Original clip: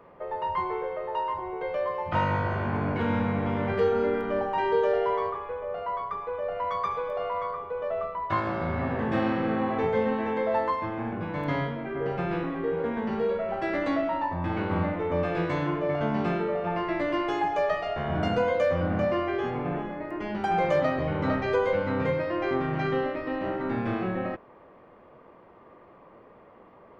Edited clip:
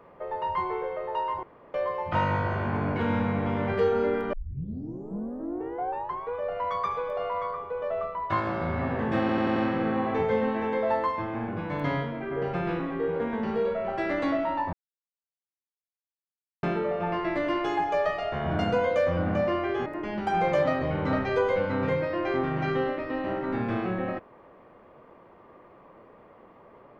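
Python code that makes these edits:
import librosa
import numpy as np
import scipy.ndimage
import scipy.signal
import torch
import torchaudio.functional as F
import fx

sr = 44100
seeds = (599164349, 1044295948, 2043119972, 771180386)

y = fx.edit(x, sr, fx.room_tone_fill(start_s=1.43, length_s=0.31),
    fx.tape_start(start_s=4.33, length_s=2.02),
    fx.stutter(start_s=9.2, slice_s=0.09, count=5),
    fx.silence(start_s=14.37, length_s=1.9),
    fx.cut(start_s=19.5, length_s=0.53), tone=tone)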